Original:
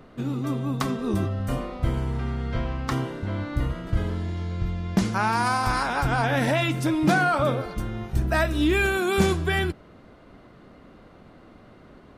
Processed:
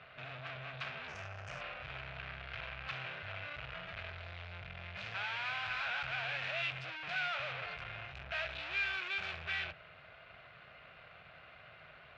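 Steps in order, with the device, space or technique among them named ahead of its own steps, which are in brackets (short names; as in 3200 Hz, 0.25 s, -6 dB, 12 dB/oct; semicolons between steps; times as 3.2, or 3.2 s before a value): scooped metal amplifier (tube stage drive 39 dB, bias 0.55; speaker cabinet 110–3600 Hz, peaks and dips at 150 Hz +4 dB, 210 Hz -8 dB, 650 Hz +7 dB, 960 Hz -4 dB, 1500 Hz +5 dB, 2500 Hz +9 dB; passive tone stack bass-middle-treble 10-0-10); 1.08–1.61 resonant high shelf 4900 Hz +8.5 dB, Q 3; gain +7 dB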